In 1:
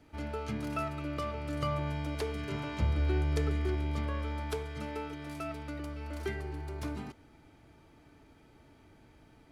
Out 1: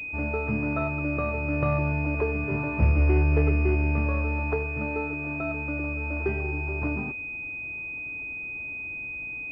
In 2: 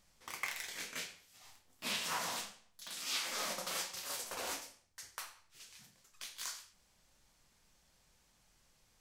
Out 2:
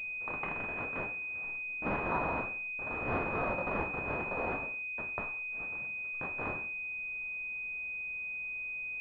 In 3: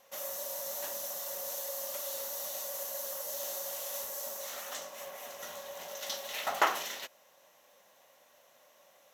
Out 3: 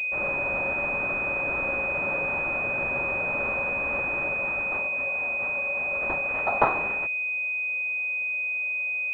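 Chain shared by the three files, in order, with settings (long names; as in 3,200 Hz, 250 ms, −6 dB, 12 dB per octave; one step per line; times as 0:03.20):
switching amplifier with a slow clock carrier 2,500 Hz
level +8.5 dB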